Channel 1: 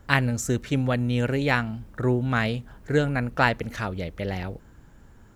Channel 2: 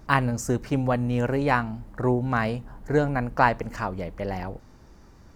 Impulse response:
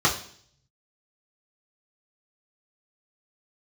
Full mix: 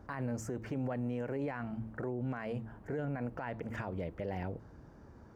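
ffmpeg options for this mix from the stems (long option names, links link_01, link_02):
-filter_complex "[0:a]lowpass=1300,bandreject=frequency=111:width_type=h:width=4,bandreject=frequency=222:width_type=h:width=4,bandreject=frequency=333:width_type=h:width=4,volume=-1.5dB[link_01];[1:a]equalizer=frequency=450:width=0.49:gain=12,acompressor=threshold=-14dB:ratio=6,volume=-1,volume=-15dB,asplit=2[link_02][link_03];[link_03]apad=whole_len=235954[link_04];[link_01][link_04]sidechaincompress=threshold=-38dB:ratio=8:attack=8.4:release=170[link_05];[link_05][link_02]amix=inputs=2:normalize=0,highpass=61,alimiter=level_in=5dB:limit=-24dB:level=0:latency=1:release=16,volume=-5dB"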